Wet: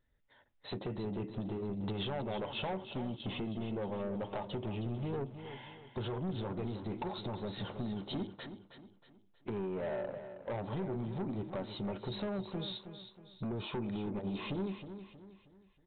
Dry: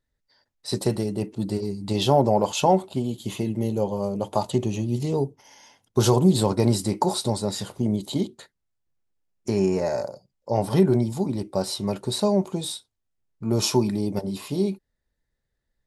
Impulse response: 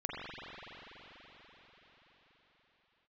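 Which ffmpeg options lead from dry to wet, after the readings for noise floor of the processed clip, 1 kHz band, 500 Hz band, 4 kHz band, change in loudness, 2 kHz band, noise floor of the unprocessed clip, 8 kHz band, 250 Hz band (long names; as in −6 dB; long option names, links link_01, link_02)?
−67 dBFS, −16.0 dB, −15.5 dB, −13.0 dB, −15.0 dB, −6.5 dB, −79 dBFS, below −40 dB, −14.0 dB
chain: -af "acompressor=threshold=-32dB:ratio=8,aresample=8000,asoftclip=type=tanh:threshold=-35.5dB,aresample=44100,aecho=1:1:317|634|951|1268:0.299|0.119|0.0478|0.0191,volume=2.5dB"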